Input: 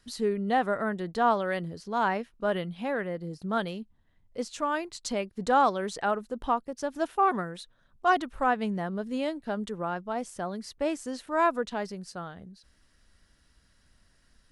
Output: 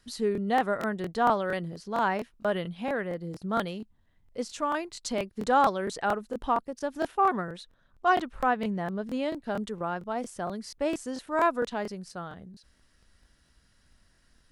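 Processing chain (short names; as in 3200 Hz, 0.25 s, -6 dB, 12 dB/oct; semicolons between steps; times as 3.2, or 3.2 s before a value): 7.11–9.44 high shelf 8400 Hz -10 dB; crackling interface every 0.23 s, samples 1024, repeat, from 0.33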